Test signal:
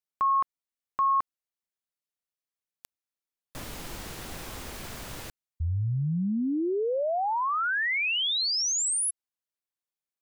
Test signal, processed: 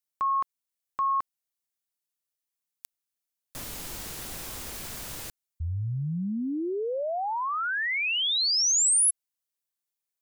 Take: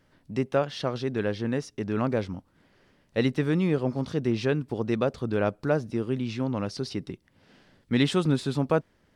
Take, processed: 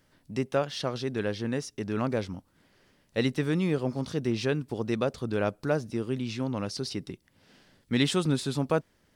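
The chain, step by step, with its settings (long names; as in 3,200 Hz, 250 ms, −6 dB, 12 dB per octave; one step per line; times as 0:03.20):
high-shelf EQ 4,600 Hz +10 dB
level −2.5 dB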